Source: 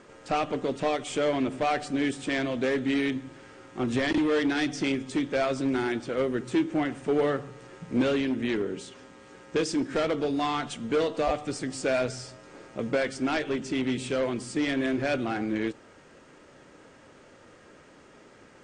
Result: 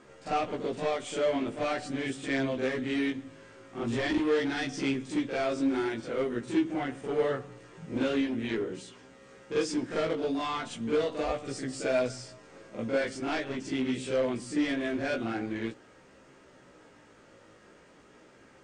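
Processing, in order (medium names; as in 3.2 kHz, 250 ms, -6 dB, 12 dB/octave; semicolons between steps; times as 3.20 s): reverse echo 44 ms -7.5 dB; chorus 0.43 Hz, delay 15 ms, depth 3.6 ms; trim -1 dB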